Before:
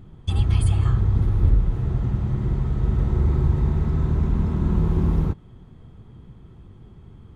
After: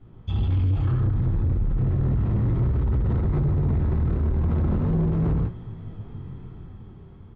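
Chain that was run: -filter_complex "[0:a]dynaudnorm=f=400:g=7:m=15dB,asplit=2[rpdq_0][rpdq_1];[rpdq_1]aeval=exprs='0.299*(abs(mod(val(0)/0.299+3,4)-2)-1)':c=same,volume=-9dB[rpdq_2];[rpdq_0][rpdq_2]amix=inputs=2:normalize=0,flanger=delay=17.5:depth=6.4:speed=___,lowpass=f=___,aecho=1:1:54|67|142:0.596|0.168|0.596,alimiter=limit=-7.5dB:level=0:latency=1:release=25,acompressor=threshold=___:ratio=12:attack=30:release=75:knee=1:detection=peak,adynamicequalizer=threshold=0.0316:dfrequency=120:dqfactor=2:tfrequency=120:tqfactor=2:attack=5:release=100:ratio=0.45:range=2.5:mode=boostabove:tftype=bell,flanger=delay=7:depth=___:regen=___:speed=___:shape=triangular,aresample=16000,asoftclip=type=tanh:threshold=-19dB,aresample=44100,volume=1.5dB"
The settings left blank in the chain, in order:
0.37, 2900, -16dB, 6.6, -65, 1.2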